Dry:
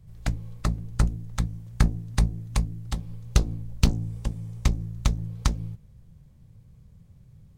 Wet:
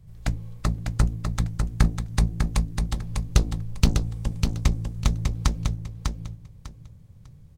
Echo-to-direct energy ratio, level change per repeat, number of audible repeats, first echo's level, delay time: −5.0 dB, −13.0 dB, 3, −5.0 dB, 599 ms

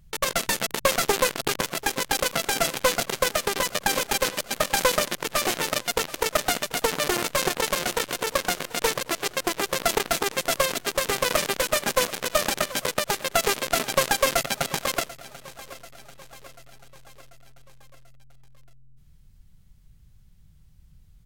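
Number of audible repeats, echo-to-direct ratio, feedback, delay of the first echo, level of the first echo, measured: 4, −16.5 dB, 58%, 739 ms, −18.5 dB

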